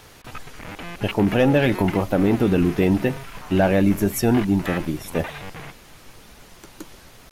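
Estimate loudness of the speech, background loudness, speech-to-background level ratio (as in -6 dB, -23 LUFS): -20.5 LUFS, -36.5 LUFS, 16.0 dB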